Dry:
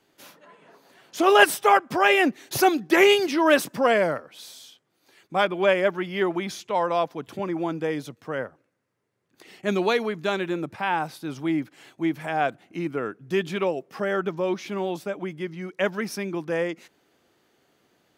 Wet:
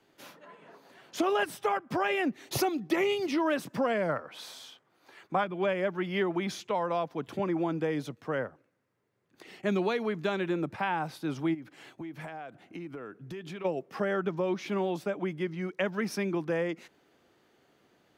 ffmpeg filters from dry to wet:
ffmpeg -i in.wav -filter_complex "[0:a]asettb=1/sr,asplit=3[link_01][link_02][link_03];[link_01]atrim=end=2.454[link_04];[link_02]atrim=start=2.45:end=3.38,asetpts=PTS-STARTPTS,afade=type=in:duration=0.004:curve=qsin,afade=type=out:start_time=0.926:duration=0.004:curve=qsin,bandreject=frequency=1600:width=5.8[link_05];[link_03]atrim=start=3.376[link_06];[link_04][link_05]acrossfade=duration=0.004:curve1=hsin:curve2=qsin[link_07];[link_07][link_06]acrossfade=duration=0.004:curve1=qsin:curve2=hsin,asettb=1/sr,asplit=3[link_08][link_09][link_10];[link_08]atrim=end=4.094[link_11];[link_09]atrim=start=4.09:end=5.44,asetpts=PTS-STARTPTS,afade=type=in:duration=0.004:curve=qsin,afade=type=out:start_time=1.346:duration=0.004:curve=qsin,equalizer=frequency=1100:width_type=o:width=2:gain=8[link_12];[link_10]atrim=start=5.436[link_13];[link_11][link_12]acrossfade=duration=0.004:curve1=hsin:curve2=qsin[link_14];[link_14][link_13]acrossfade=duration=0.004:curve1=qsin:curve2=hsin,asplit=3[link_15][link_16][link_17];[link_15]afade=type=out:start_time=11.53:duration=0.02[link_18];[link_16]acompressor=threshold=-36dB:ratio=20:attack=3.2:release=140:knee=1:detection=peak,afade=type=in:start_time=11.53:duration=0.02,afade=type=out:start_time=13.64:duration=0.02[link_19];[link_17]afade=type=in:start_time=13.64:duration=0.02[link_20];[link_18][link_19][link_20]amix=inputs=3:normalize=0,highshelf=frequency=4800:gain=-7,acrossover=split=190[link_21][link_22];[link_22]acompressor=threshold=-27dB:ratio=5[link_23];[link_21][link_23]amix=inputs=2:normalize=0" out.wav

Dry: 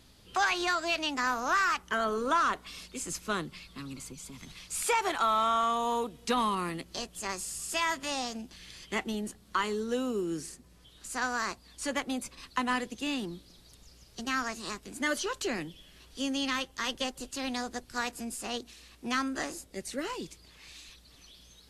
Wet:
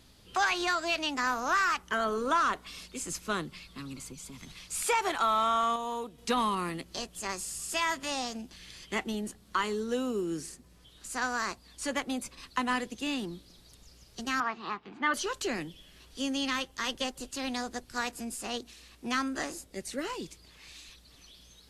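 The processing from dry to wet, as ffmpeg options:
ffmpeg -i in.wav -filter_complex "[0:a]asettb=1/sr,asplit=3[link_01][link_02][link_03];[link_01]atrim=end=14.404[link_04];[link_02]atrim=start=14.4:end=15.14,asetpts=PTS-STARTPTS,afade=type=in:duration=0.004:curve=qsin,afade=type=out:start_time=0.736:duration=0.004:curve=qsin,highpass=150,equalizer=frequency=260:width_type=q:width=4:gain=-4,equalizer=frequency=570:width_type=q:width=4:gain=-8,equalizer=frequency=840:width_type=q:width=4:gain=9,equalizer=frequency=1200:width_type=q:width=4:gain=8,lowpass=frequency=3400:width=0.5412,lowpass=frequency=3400:width=1.3066[link_05];[link_03]atrim=start=15.136[link_06];[link_04][link_05]acrossfade=duration=0.004:curve1=hsin:curve2=qsin[link_07];[link_07][link_06]acrossfade=duration=0.004:curve1=qsin:curve2=hsin,asplit=3[link_08][link_09][link_10];[link_08]atrim=end=5.762[link_11];[link_09]atrim=start=5.758:end=6.182,asetpts=PTS-STARTPTS,volume=-5dB[link_12];[link_10]atrim=start=6.178[link_13];[link_11][link_12]acrossfade=duration=0.004:curve1=hsin:curve2=hsin[link_14];[link_14][link_13]acrossfade=duration=0.004:curve1=hsin:curve2=hsin" out.wav

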